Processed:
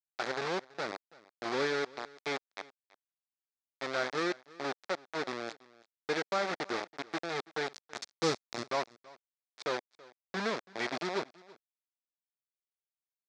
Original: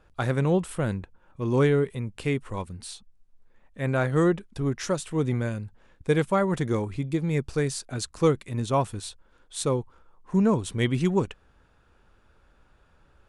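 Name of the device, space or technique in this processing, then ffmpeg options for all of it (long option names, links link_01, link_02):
hand-held game console: -filter_complex "[0:a]acrusher=bits=3:mix=0:aa=0.000001,highpass=450,equalizer=frequency=490:width_type=q:width=4:gain=-3,equalizer=frequency=980:width_type=q:width=4:gain=-4,equalizer=frequency=2900:width_type=q:width=4:gain=-9,lowpass=frequency=5100:width=0.5412,lowpass=frequency=5100:width=1.3066,asettb=1/sr,asplit=3[link_01][link_02][link_03];[link_01]atrim=end=7.704[link_04];[link_02]atrim=start=7.7:end=8.63,asetpts=PTS-STARTPTS,afade=type=in:duration=0.004:curve=qsin,afade=type=out:start_time=0.926:duration=0.004:curve=qsin,bass=frequency=250:gain=10,treble=frequency=4000:gain=11[link_05];[link_03]atrim=start=8.626[link_06];[link_04][link_05]acrossfade=duration=0.004:curve1=hsin:curve2=qsin[link_07];[link_07][link_06]acrossfade=duration=0.004:curve1=qsin:curve2=hsin,aecho=1:1:330:0.0794,volume=-5.5dB"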